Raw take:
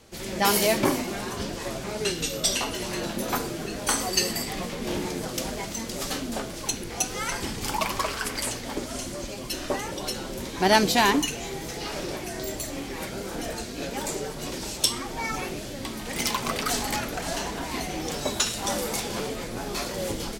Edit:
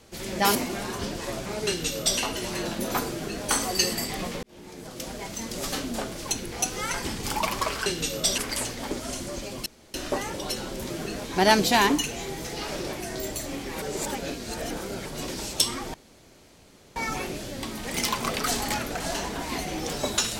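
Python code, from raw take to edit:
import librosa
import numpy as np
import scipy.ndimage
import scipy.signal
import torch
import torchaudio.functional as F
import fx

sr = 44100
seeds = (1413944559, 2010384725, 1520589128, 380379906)

y = fx.edit(x, sr, fx.cut(start_s=0.55, length_s=0.38),
    fx.duplicate(start_s=2.06, length_s=0.52, to_s=8.24),
    fx.duplicate(start_s=3.5, length_s=0.34, to_s=10.48),
    fx.fade_in_span(start_s=4.81, length_s=1.17),
    fx.insert_room_tone(at_s=9.52, length_s=0.28),
    fx.reverse_span(start_s=13.06, length_s=1.24),
    fx.insert_room_tone(at_s=15.18, length_s=1.02), tone=tone)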